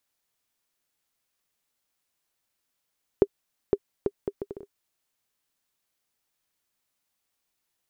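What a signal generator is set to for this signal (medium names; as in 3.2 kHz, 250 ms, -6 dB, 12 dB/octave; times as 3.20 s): bouncing ball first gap 0.51 s, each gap 0.65, 401 Hz, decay 51 ms -6 dBFS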